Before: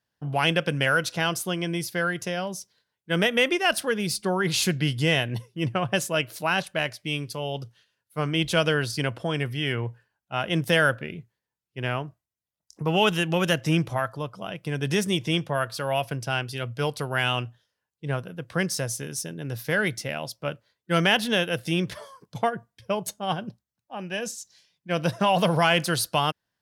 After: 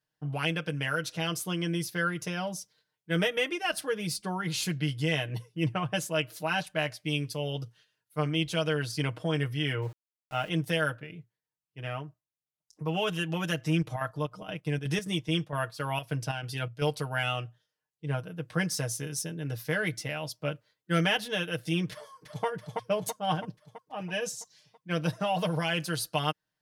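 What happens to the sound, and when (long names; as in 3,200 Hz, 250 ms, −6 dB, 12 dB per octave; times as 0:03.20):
0:09.82–0:10.49: centre clipping without the shift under −42.5 dBFS
0:13.79–0:16.83: square-wave tremolo 7.5 Hz → 2.4 Hz, depth 60%, duty 65%
0:21.92–0:22.45: delay throw 330 ms, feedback 60%, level −4.5 dB
whole clip: speech leveller within 3 dB 0.5 s; comb filter 6.5 ms, depth 81%; level −7.5 dB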